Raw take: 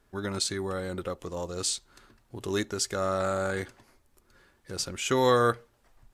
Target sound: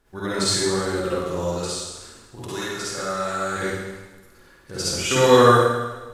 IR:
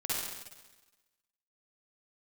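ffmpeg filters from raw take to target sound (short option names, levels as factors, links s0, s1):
-filter_complex "[0:a]asettb=1/sr,asplit=3[s0][s1][s2];[s0]atrim=end=1.484[s3];[s1]atrim=start=1.48:end=3.57,asetpts=PTS-STARTPTS,afade=t=in:d=0.004:c=qsin,afade=t=out:st=2.086:d=0.004:c=qsin,acrossover=split=650|1300[s4][s5][s6];[s4]acompressor=threshold=0.00794:ratio=4[s7];[s5]acompressor=threshold=0.01:ratio=4[s8];[s6]acompressor=threshold=0.0126:ratio=4[s9];[s7][s8][s9]amix=inputs=3:normalize=0[s10];[s2]atrim=start=3.566[s11];[s3][s10]acrossfade=d=0.004:c1=hsin:c2=qsin[s12];[s12][s11]acrossfade=d=0.004:c1=qsin:c2=hsin[s13];[1:a]atrim=start_sample=2205[s14];[s13][s14]afir=irnorm=-1:irlink=0,volume=1.58"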